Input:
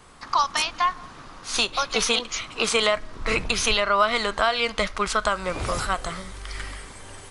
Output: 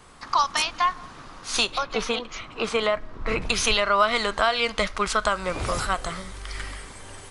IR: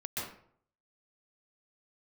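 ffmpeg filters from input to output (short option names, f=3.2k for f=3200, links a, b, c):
-filter_complex "[0:a]asettb=1/sr,asplit=3[a][b][c];[a]atrim=end=1.784[d];[b]atrim=start=1.78:end=3.42,asetpts=PTS-STARTPTS,afade=t=in:d=0.004:c=qsin,afade=t=out:st=1.636:d=0.004:c=qsin,lowpass=f=1.6k:p=1[e];[c]atrim=start=3.416[f];[d][e]acrossfade=d=0.004:c1=hsin:c2=qsin[g];[g][f]acrossfade=d=0.004:c1=qsin:c2=hsin"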